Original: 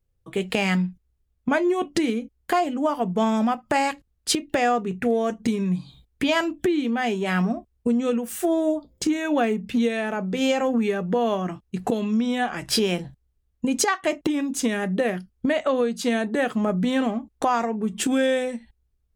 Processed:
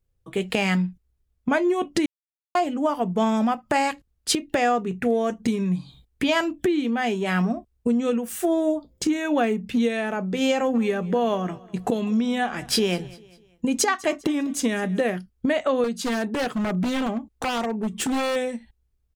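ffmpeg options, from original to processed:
ffmpeg -i in.wav -filter_complex "[0:a]asplit=3[link_01][link_02][link_03];[link_01]afade=type=out:start_time=10.74:duration=0.02[link_04];[link_02]aecho=1:1:200|400|600:0.0891|0.0374|0.0157,afade=type=in:start_time=10.74:duration=0.02,afade=type=out:start_time=15.01:duration=0.02[link_05];[link_03]afade=type=in:start_time=15.01:duration=0.02[link_06];[link_04][link_05][link_06]amix=inputs=3:normalize=0,asettb=1/sr,asplit=3[link_07][link_08][link_09];[link_07]atrim=end=15.844[link_10];[link_08]atrim=start=15.84:end=18.36,asetpts=PTS-STARTPTS,afade=type=in:duration=0.004:curve=qsin,afade=type=out:start_time=2.516:duration=0.004:curve=qsin,aeval=exprs='0.106*(abs(mod(val(0)/0.106+3,4)-2)-1)':channel_layout=same[link_11];[link_09]atrim=start=18.356[link_12];[link_10][link_11]acrossfade=duration=0.004:curve1=hsin:curve2=qsin[link_13];[link_13][link_12]acrossfade=duration=0.004:curve1=qsin:curve2=hsin,asplit=3[link_14][link_15][link_16];[link_14]atrim=end=2.06,asetpts=PTS-STARTPTS,afade=type=out:start_time=2.056:duration=0.004:curve=hsin[link_17];[link_15]atrim=start=2.06:end=2.55,asetpts=PTS-STARTPTS,volume=0[link_18];[link_16]atrim=start=2.55,asetpts=PTS-STARTPTS,afade=type=in:duration=0.004:curve=hsin[link_19];[link_17][link_18][link_19]concat=n=3:v=0:a=1" out.wav

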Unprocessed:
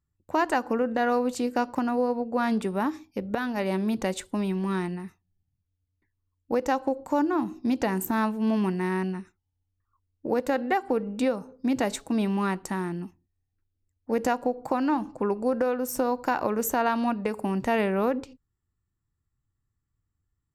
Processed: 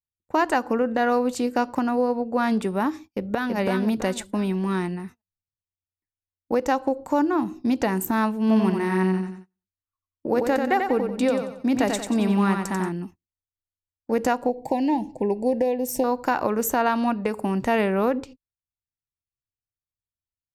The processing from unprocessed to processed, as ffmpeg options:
ffmpeg -i in.wav -filter_complex "[0:a]asplit=2[link_01][link_02];[link_02]afade=type=in:start_time=3.05:duration=0.01,afade=type=out:start_time=3.56:duration=0.01,aecho=0:1:330|660|990|1320|1650:0.668344|0.267338|0.106935|0.042774|0.0171096[link_03];[link_01][link_03]amix=inputs=2:normalize=0,asplit=3[link_04][link_05][link_06];[link_04]afade=type=out:start_time=8.48:duration=0.02[link_07];[link_05]aecho=1:1:91|182|273|364|455:0.562|0.219|0.0855|0.0334|0.013,afade=type=in:start_time=8.48:duration=0.02,afade=type=out:start_time=12.88:duration=0.02[link_08];[link_06]afade=type=in:start_time=12.88:duration=0.02[link_09];[link_07][link_08][link_09]amix=inputs=3:normalize=0,asettb=1/sr,asplit=3[link_10][link_11][link_12];[link_10]atrim=end=14.494[link_13];[link_11]atrim=start=14.49:end=16.04,asetpts=PTS-STARTPTS,afade=type=in:duration=0.004:curve=qsin,afade=type=out:start_time=1.546:duration=0.004:curve=qsin,asuperstop=centerf=1300:order=8:qfactor=1.5[link_14];[link_12]atrim=start=16.036[link_15];[link_13][link_14]acrossfade=duration=0.004:curve1=hsin:curve2=qsin[link_16];[link_16][link_15]acrossfade=duration=0.004:curve1=qsin:curve2=hsin,agate=range=-25dB:threshold=-44dB:ratio=16:detection=peak,volume=3dB" out.wav

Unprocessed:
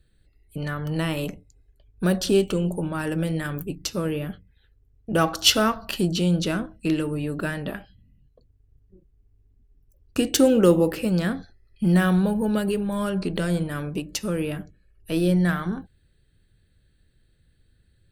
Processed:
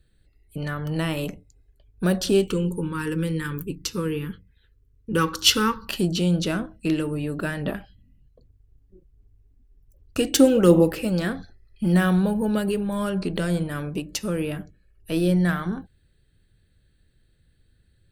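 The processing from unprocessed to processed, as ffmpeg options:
ffmpeg -i in.wav -filter_complex "[0:a]asettb=1/sr,asplit=3[link_01][link_02][link_03];[link_01]atrim=end=2.474[link_04];[link_02]atrim=start=2.47:end=5.89,asetpts=PTS-STARTPTS,afade=type=in:duration=0.004:curve=qsin,afade=type=out:start_time=3.416:duration=0.004:curve=qsin,asuperstop=centerf=680:order=12:qfactor=2.1[link_05];[link_03]atrim=start=5.886[link_06];[link_04][link_05]acrossfade=duration=0.004:curve1=hsin:curve2=qsin[link_07];[link_07][link_06]acrossfade=duration=0.004:curve1=qsin:curve2=hsin,asplit=3[link_08][link_09][link_10];[link_08]afade=type=out:start_time=7.58:duration=0.02[link_11];[link_09]aphaser=in_gain=1:out_gain=1:delay=3.7:decay=0.36:speed=1.3:type=sinusoidal,afade=type=in:start_time=7.58:duration=0.02,afade=type=out:start_time=11.92:duration=0.02[link_12];[link_10]afade=type=in:start_time=11.92:duration=0.02[link_13];[link_11][link_12][link_13]amix=inputs=3:normalize=0" out.wav

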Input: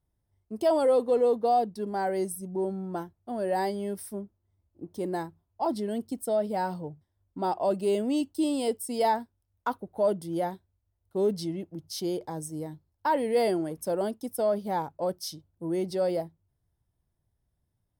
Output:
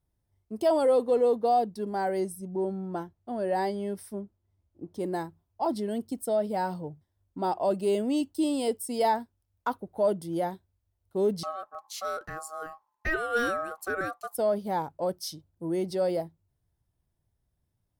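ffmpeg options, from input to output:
ffmpeg -i in.wav -filter_complex "[0:a]asettb=1/sr,asplit=3[link_01][link_02][link_03];[link_01]atrim=end=2.204[link_04];[link_02]atrim=start=2.2:end=5,asetpts=PTS-STARTPTS,afade=type=in:duration=0.004:curve=qsin,afade=type=out:start_time=2.796:duration=0.004:curve=qsin,highshelf=frequency=8300:gain=-9[link_05];[link_03]atrim=start=4.996[link_06];[link_04][link_05]acrossfade=duration=0.004:curve1=hsin:curve2=qsin[link_07];[link_07][link_06]acrossfade=duration=0.004:curve1=qsin:curve2=hsin,asettb=1/sr,asplit=3[link_08][link_09][link_10];[link_08]atrim=end=11.434[link_11];[link_09]atrim=start=11.43:end=14.35,asetpts=PTS-STARTPTS,afade=type=in:duration=0.004:curve=qsin,afade=type=out:start_time=2.916:duration=0.004:curve=qsin,aeval=exprs='val(0)*sin(2*PI*950*n/s)':channel_layout=same[link_12];[link_10]atrim=start=14.346[link_13];[link_11][link_12]acrossfade=duration=0.004:curve1=hsin:curve2=qsin[link_14];[link_14][link_13]acrossfade=duration=0.004:curve1=qsin:curve2=hsin" out.wav

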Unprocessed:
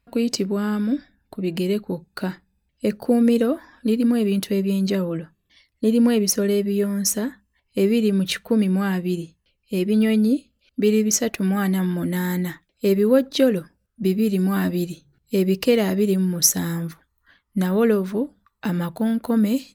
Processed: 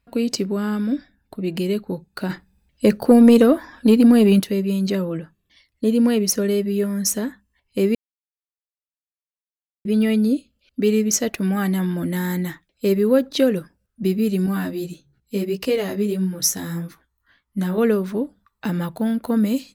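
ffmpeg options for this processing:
ffmpeg -i in.wav -filter_complex "[0:a]asplit=3[link_01][link_02][link_03];[link_01]afade=type=out:start_time=2.29:duration=0.02[link_04];[link_02]acontrast=85,afade=type=in:start_time=2.29:duration=0.02,afade=type=out:start_time=4.4:duration=0.02[link_05];[link_03]afade=type=in:start_time=4.4:duration=0.02[link_06];[link_04][link_05][link_06]amix=inputs=3:normalize=0,asettb=1/sr,asplit=3[link_07][link_08][link_09];[link_07]atrim=end=14.464[link_10];[link_08]atrim=start=14.46:end=17.78,asetpts=PTS-STARTPTS,afade=type=in:duration=0.004:curve=qsin,afade=type=out:start_time=3.316:duration=0.004:curve=qsin,flanger=delay=15:depth=4.7:speed=1.6[link_11];[link_09]atrim=start=17.776[link_12];[link_10][link_11]acrossfade=duration=0.004:curve1=hsin:curve2=qsin[link_13];[link_13][link_12]acrossfade=duration=0.004:curve1=qsin:curve2=hsin,asplit=3[link_14][link_15][link_16];[link_14]atrim=end=7.95,asetpts=PTS-STARTPTS,afade=type=out:start_time=7.946:duration=0.004:curve=hsin[link_17];[link_15]atrim=start=7.95:end=9.85,asetpts=PTS-STARTPTS,volume=0[link_18];[link_16]atrim=start=9.85,asetpts=PTS-STARTPTS,afade=type=in:duration=0.004:curve=hsin[link_19];[link_17][link_18][link_19]concat=n=3:v=0:a=1" out.wav

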